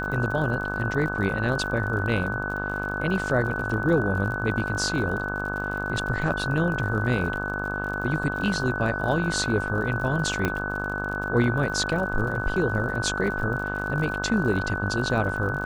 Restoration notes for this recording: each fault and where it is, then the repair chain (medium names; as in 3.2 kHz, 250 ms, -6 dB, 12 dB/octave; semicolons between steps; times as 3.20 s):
buzz 50 Hz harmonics 33 -32 dBFS
crackle 53 per s -33 dBFS
whine 1.5 kHz -30 dBFS
10.45 s: pop -10 dBFS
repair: de-click; de-hum 50 Hz, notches 33; band-stop 1.5 kHz, Q 30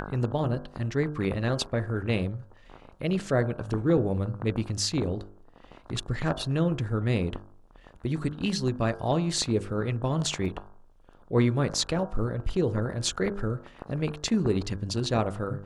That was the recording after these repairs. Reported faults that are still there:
10.45 s: pop